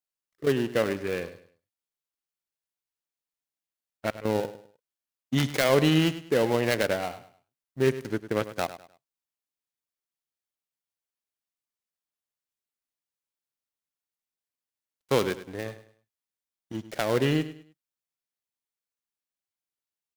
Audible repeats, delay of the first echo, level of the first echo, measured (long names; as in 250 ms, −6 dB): 3, 102 ms, −14.0 dB